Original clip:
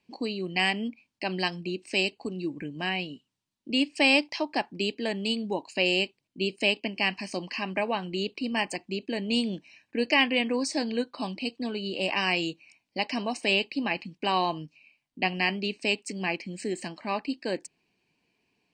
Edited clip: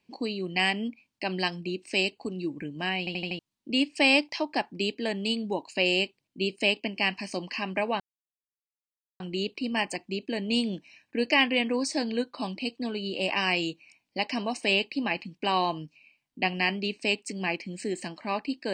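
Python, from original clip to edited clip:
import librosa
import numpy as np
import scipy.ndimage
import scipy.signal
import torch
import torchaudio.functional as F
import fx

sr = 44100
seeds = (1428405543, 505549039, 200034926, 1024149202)

y = fx.edit(x, sr, fx.stutter_over(start_s=2.99, slice_s=0.08, count=5),
    fx.insert_silence(at_s=8.0, length_s=1.2), tone=tone)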